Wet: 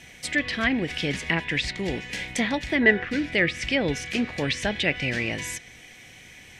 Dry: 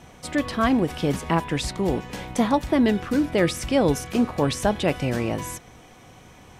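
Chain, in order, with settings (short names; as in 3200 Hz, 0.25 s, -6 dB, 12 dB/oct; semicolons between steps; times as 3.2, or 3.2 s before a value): spectral gain 2.82–3.05, 360–2000 Hz +8 dB; resonant high shelf 1500 Hz +9 dB, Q 3; treble ducked by the level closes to 2400 Hz, closed at -13 dBFS; gain -5 dB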